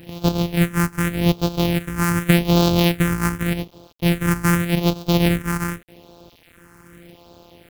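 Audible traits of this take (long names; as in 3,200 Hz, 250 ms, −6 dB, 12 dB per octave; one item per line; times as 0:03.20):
a buzz of ramps at a fixed pitch in blocks of 256 samples
sample-and-hold tremolo
a quantiser's noise floor 8 bits, dither none
phaser sweep stages 4, 0.85 Hz, lowest notch 590–1,900 Hz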